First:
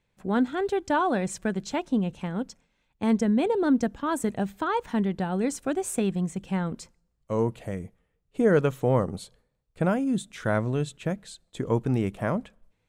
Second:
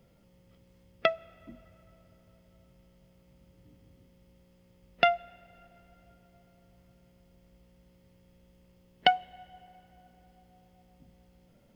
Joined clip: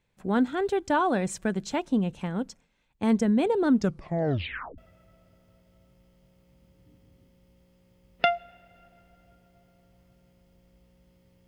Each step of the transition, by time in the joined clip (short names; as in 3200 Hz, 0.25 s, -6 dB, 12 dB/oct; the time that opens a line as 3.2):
first
3.68 tape stop 1.10 s
4.78 switch to second from 1.57 s